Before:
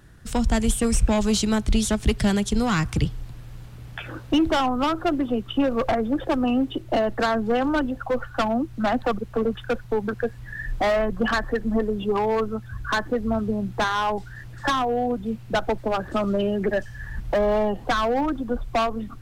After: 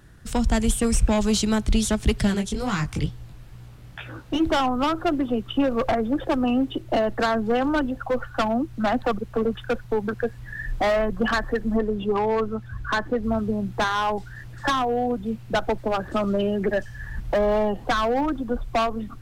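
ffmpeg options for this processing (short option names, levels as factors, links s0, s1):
-filter_complex "[0:a]asplit=3[s0][s1][s2];[s0]afade=t=out:st=2.26:d=0.02[s3];[s1]flanger=delay=15.5:depth=7.4:speed=2.2,afade=t=in:st=2.26:d=0.02,afade=t=out:st=4.39:d=0.02[s4];[s2]afade=t=in:st=4.39:d=0.02[s5];[s3][s4][s5]amix=inputs=3:normalize=0,asettb=1/sr,asplit=3[s6][s7][s8];[s6]atrim=end=11.774[s9];[s7]atrim=start=11.77:end=13.24,asetpts=PTS-STARTPTS,afade=t=in:d=0.004:c=qsin,afade=t=out:st=1.466:d=0.004:c=qsin,highshelf=f=6600:g=-8[s10];[s8]atrim=start=13.236[s11];[s9][s10]acrossfade=d=0.004:c1=hsin:c2=qsin[s12];[s12][s11]acrossfade=d=0.004:c1=qsin:c2=hsin"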